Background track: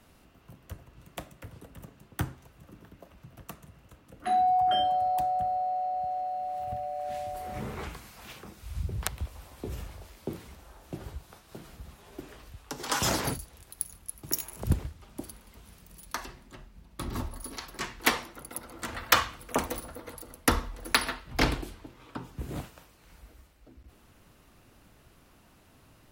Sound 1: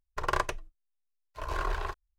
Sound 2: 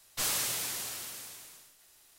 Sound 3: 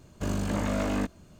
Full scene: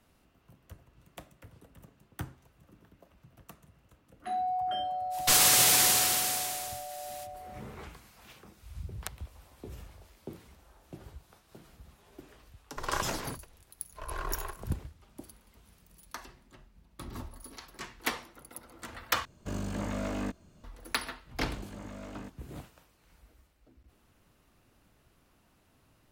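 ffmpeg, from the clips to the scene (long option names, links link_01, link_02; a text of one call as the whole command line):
ffmpeg -i bed.wav -i cue0.wav -i cue1.wav -i cue2.wav -filter_complex "[3:a]asplit=2[link_01][link_02];[0:a]volume=-7.5dB[link_03];[2:a]alimiter=level_in=24.5dB:limit=-1dB:release=50:level=0:latency=1[link_04];[1:a]aecho=1:1:342:0.141[link_05];[link_03]asplit=2[link_06][link_07];[link_06]atrim=end=19.254[link_08];[link_01]atrim=end=1.39,asetpts=PTS-STARTPTS,volume=-6dB[link_09];[link_07]atrim=start=20.636[link_10];[link_04]atrim=end=2.18,asetpts=PTS-STARTPTS,volume=-11dB,afade=type=in:duration=0.05,afade=type=out:start_time=2.13:duration=0.05,adelay=5100[link_11];[link_05]atrim=end=2.18,asetpts=PTS-STARTPTS,volume=-5dB,afade=type=in:duration=0.004:curve=hsin,afade=type=out:start_time=2.176:duration=0.004:curve=hsin,adelay=12600[link_12];[link_02]atrim=end=1.39,asetpts=PTS-STARTPTS,volume=-16dB,afade=type=in:duration=0.004:curve=hsin,afade=type=out:start_time=1.386:duration=0.004:curve=hsin,adelay=21230[link_13];[link_08][link_09]acrossfade=duration=0.004:curve1=hsin:curve2=hsin[link_14];[link_14][link_10]acrossfade=duration=0.004:curve1=hsin:curve2=hsin[link_15];[link_15][link_11][link_12][link_13]amix=inputs=4:normalize=0" out.wav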